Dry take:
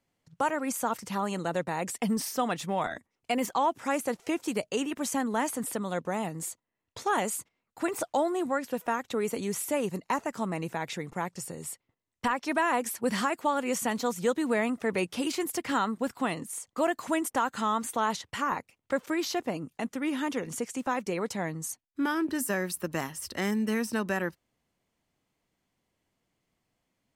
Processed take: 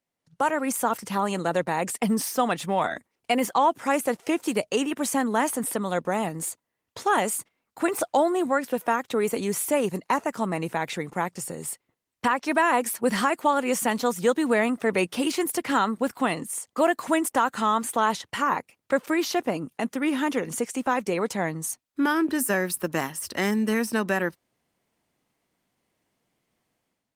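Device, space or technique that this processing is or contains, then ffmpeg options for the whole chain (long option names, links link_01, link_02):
video call: -af "highpass=frequency=160:poles=1,dynaudnorm=framelen=140:gausssize=5:maxgain=12dB,volume=-5.5dB" -ar 48000 -c:a libopus -b:a 32k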